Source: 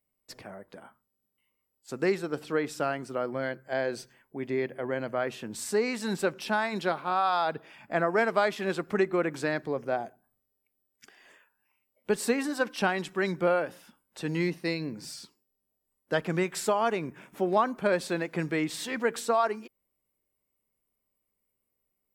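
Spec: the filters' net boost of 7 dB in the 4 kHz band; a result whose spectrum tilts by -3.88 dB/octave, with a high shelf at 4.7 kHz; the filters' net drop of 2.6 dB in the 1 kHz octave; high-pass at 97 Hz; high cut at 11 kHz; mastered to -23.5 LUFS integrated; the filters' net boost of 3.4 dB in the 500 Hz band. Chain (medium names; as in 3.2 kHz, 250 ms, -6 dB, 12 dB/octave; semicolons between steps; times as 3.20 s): high-pass 97 Hz; low-pass 11 kHz; peaking EQ 500 Hz +6 dB; peaking EQ 1 kHz -7 dB; peaking EQ 4 kHz +5.5 dB; treble shelf 4.7 kHz +6.5 dB; trim +4 dB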